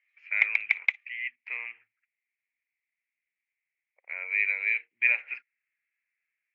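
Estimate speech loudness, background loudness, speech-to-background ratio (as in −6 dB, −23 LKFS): −28.5 LKFS, −27.0 LKFS, −1.5 dB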